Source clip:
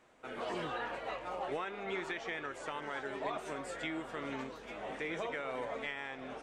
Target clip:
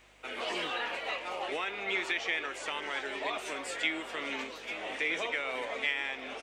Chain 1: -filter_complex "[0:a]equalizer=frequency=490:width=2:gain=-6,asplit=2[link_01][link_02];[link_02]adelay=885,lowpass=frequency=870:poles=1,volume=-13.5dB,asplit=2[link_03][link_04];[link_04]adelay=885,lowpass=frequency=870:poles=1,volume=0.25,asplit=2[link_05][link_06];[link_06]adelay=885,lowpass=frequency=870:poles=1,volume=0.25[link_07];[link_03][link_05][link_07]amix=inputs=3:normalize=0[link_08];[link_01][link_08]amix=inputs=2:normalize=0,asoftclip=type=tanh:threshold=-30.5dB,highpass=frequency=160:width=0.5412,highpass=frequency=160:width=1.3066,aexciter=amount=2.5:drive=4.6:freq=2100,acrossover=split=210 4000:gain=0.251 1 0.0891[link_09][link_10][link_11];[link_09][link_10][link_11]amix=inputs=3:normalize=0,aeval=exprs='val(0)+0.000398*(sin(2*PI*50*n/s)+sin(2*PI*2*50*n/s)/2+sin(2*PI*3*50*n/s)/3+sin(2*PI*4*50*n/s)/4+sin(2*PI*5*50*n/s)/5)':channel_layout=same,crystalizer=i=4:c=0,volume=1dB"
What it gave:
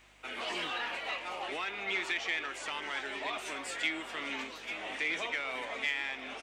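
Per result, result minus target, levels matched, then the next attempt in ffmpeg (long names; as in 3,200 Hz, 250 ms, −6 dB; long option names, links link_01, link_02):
soft clipping: distortion +18 dB; 500 Hz band −3.5 dB
-filter_complex "[0:a]equalizer=frequency=490:width=2:gain=-6,asplit=2[link_01][link_02];[link_02]adelay=885,lowpass=frequency=870:poles=1,volume=-13.5dB,asplit=2[link_03][link_04];[link_04]adelay=885,lowpass=frequency=870:poles=1,volume=0.25,asplit=2[link_05][link_06];[link_06]adelay=885,lowpass=frequency=870:poles=1,volume=0.25[link_07];[link_03][link_05][link_07]amix=inputs=3:normalize=0[link_08];[link_01][link_08]amix=inputs=2:normalize=0,asoftclip=type=tanh:threshold=-19dB,highpass=frequency=160:width=0.5412,highpass=frequency=160:width=1.3066,aexciter=amount=2.5:drive=4.6:freq=2100,acrossover=split=210 4000:gain=0.251 1 0.0891[link_09][link_10][link_11];[link_09][link_10][link_11]amix=inputs=3:normalize=0,aeval=exprs='val(0)+0.000398*(sin(2*PI*50*n/s)+sin(2*PI*2*50*n/s)/2+sin(2*PI*3*50*n/s)/3+sin(2*PI*4*50*n/s)/4+sin(2*PI*5*50*n/s)/5)':channel_layout=same,crystalizer=i=4:c=0,volume=1dB"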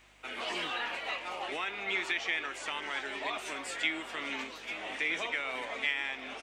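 500 Hz band −3.5 dB
-filter_complex "[0:a]asplit=2[link_01][link_02];[link_02]adelay=885,lowpass=frequency=870:poles=1,volume=-13.5dB,asplit=2[link_03][link_04];[link_04]adelay=885,lowpass=frequency=870:poles=1,volume=0.25,asplit=2[link_05][link_06];[link_06]adelay=885,lowpass=frequency=870:poles=1,volume=0.25[link_07];[link_03][link_05][link_07]amix=inputs=3:normalize=0[link_08];[link_01][link_08]amix=inputs=2:normalize=0,asoftclip=type=tanh:threshold=-19dB,highpass=frequency=160:width=0.5412,highpass=frequency=160:width=1.3066,aexciter=amount=2.5:drive=4.6:freq=2100,acrossover=split=210 4000:gain=0.251 1 0.0891[link_09][link_10][link_11];[link_09][link_10][link_11]amix=inputs=3:normalize=0,aeval=exprs='val(0)+0.000398*(sin(2*PI*50*n/s)+sin(2*PI*2*50*n/s)/2+sin(2*PI*3*50*n/s)/3+sin(2*PI*4*50*n/s)/4+sin(2*PI*5*50*n/s)/5)':channel_layout=same,crystalizer=i=4:c=0,volume=1dB"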